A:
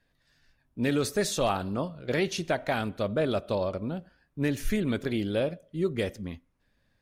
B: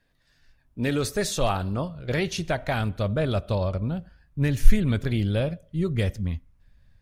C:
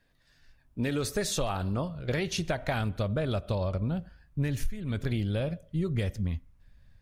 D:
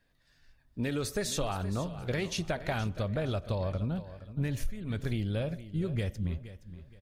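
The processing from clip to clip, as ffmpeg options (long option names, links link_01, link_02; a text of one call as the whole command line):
ffmpeg -i in.wav -af "asubboost=boost=7:cutoff=120,volume=2dB" out.wav
ffmpeg -i in.wav -af "acompressor=threshold=-25dB:ratio=20" out.wav
ffmpeg -i in.wav -af "aecho=1:1:470|940|1410:0.188|0.0565|0.017,volume=-2.5dB" out.wav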